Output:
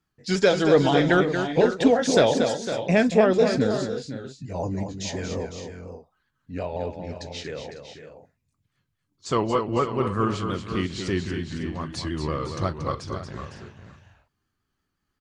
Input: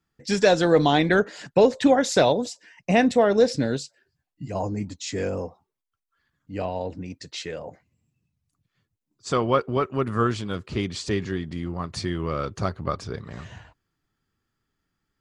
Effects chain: repeated pitch sweeps -2 st, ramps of 0.178 s; tapped delay 41/231/505/550 ms -20/-7.5/-11/-14.5 dB

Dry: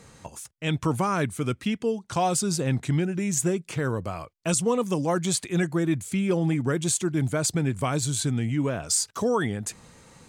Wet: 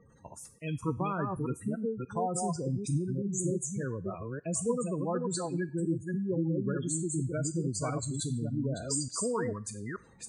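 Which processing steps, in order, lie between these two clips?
reverse delay 0.293 s, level -3 dB; spectral gate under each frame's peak -15 dB strong; on a send at -16 dB: tilt +4.5 dB/oct + reverb RT60 0.60 s, pre-delay 5 ms; 0.97–1.37 on the sum: three-band squash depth 40%; gain -8 dB

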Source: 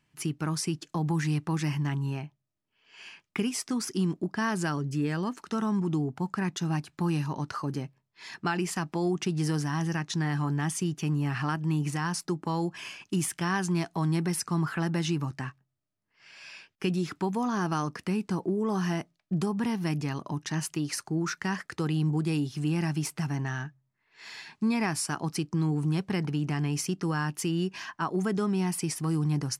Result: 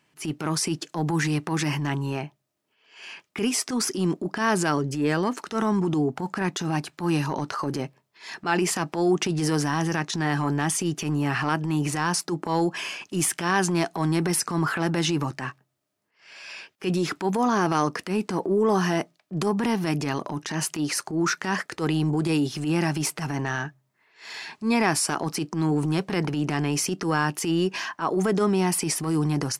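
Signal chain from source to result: HPF 290 Hz 6 dB/oct; bell 490 Hz +5 dB 1.5 oct; transient shaper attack -10 dB, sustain +3 dB; gain +7.5 dB

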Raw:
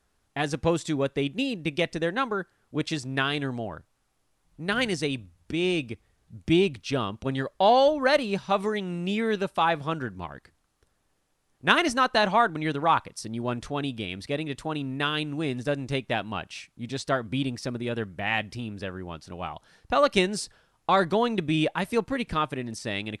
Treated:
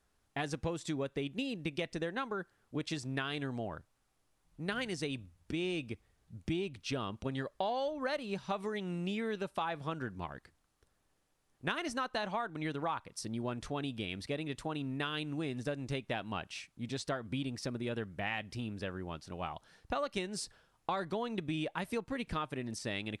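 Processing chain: compressor 6:1, threshold -28 dBFS, peak gain reduction 13.5 dB; gain -4.5 dB

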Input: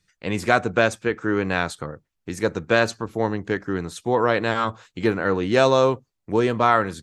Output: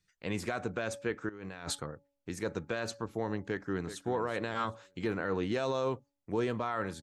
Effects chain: de-hum 282.6 Hz, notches 3; 1.29–1.8 negative-ratio compressor -34 dBFS, ratio -1; limiter -13.5 dBFS, peak gain reduction 11.5 dB; 3.39–4.04 echo throw 0.38 s, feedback 20%, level -12 dB; gain -8.5 dB

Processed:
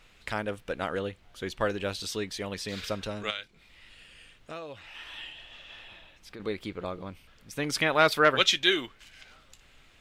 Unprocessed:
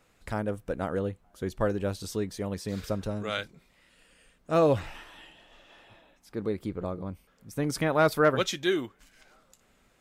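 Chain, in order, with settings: tone controls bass -4 dB, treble 0 dB; added noise brown -57 dBFS; 3.3–6.4 compressor 4:1, threshold -42 dBFS, peak gain reduction 19 dB; bell 3000 Hz +14 dB 2 oct; gain -2.5 dB

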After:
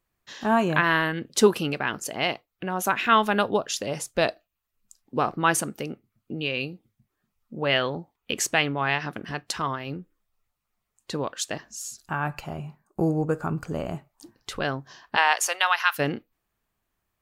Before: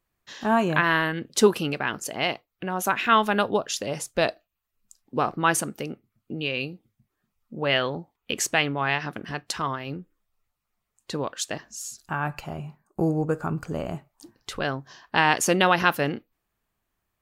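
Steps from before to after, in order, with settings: 15.15–15.98 HPF 470 Hz -> 1200 Hz 24 dB/oct

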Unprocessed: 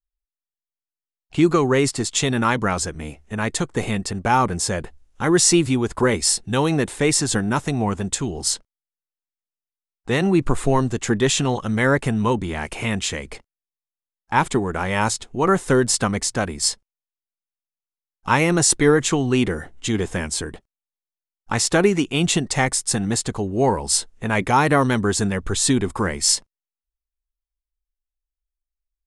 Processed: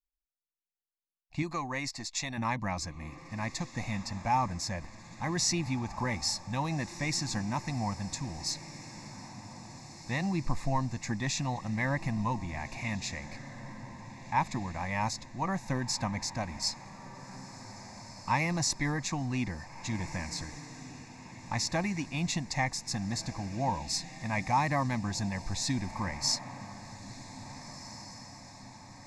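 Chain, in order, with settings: 1.42–2.38 bell 100 Hz -9.5 dB 2.6 oct; fixed phaser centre 2100 Hz, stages 8; diffused feedback echo 1.699 s, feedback 55%, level -14 dB; gain -8.5 dB

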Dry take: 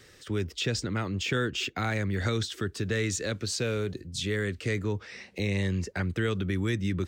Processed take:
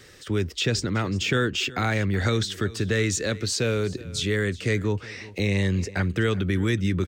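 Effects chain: echo 0.373 s -19 dB; gain +5 dB

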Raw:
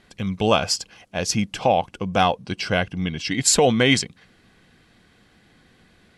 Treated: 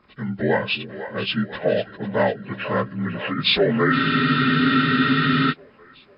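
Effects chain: inharmonic rescaling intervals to 79%; split-band echo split 340 Hz, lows 0.342 s, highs 0.498 s, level -11.5 dB; spectral freeze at 3.94, 1.57 s

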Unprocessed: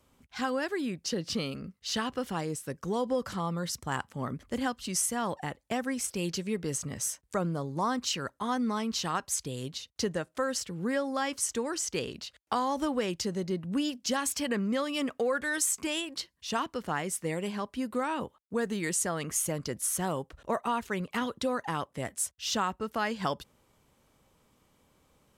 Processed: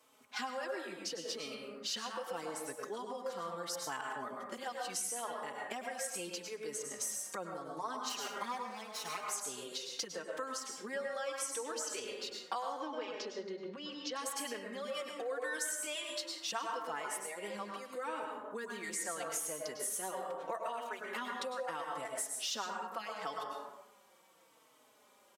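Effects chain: 8.09–9.28 minimum comb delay 4.9 ms; 12.72–14.16 LPF 5200 Hz 24 dB/oct; plate-style reverb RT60 0.84 s, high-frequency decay 0.45×, pre-delay 90 ms, DRR 2 dB; compressor 6:1, threshold -38 dBFS, peak gain reduction 14.5 dB; HPF 450 Hz 12 dB/oct; endless flanger 4.1 ms -0.77 Hz; gain +5.5 dB

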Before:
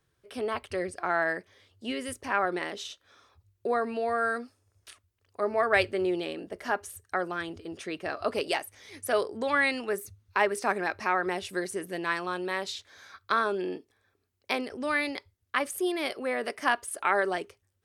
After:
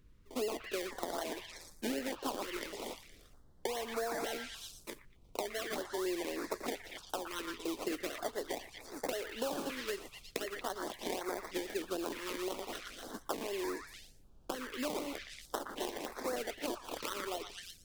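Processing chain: 15.11–16.26 spectral contrast lowered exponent 0.34; recorder AGC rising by 18 dB/s; decimation with a swept rate 26×, swing 60% 3.9 Hz; HPF 260 Hz 24 dB/oct; delay with a stepping band-pass 0.116 s, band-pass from 1600 Hz, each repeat 0.7 oct, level -0.5 dB; compressor 5:1, threshold -35 dBFS, peak gain reduction 16.5 dB; expander -36 dBFS; companded quantiser 8-bit; added noise brown -61 dBFS; stepped notch 3.3 Hz 740–3000 Hz; gain +1.5 dB

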